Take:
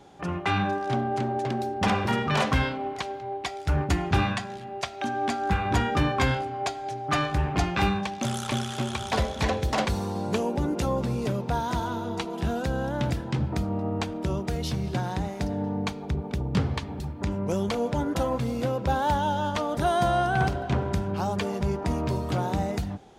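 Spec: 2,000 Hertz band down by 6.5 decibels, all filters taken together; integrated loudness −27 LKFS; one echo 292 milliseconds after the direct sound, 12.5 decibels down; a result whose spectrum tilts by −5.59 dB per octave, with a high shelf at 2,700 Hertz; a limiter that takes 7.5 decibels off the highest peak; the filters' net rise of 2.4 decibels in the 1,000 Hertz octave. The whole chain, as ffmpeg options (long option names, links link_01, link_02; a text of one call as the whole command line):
ffmpeg -i in.wav -af "equalizer=frequency=1000:width_type=o:gain=6,equalizer=frequency=2000:width_type=o:gain=-8.5,highshelf=frequency=2700:gain=-8,alimiter=limit=-17.5dB:level=0:latency=1,aecho=1:1:292:0.237,volume=1.5dB" out.wav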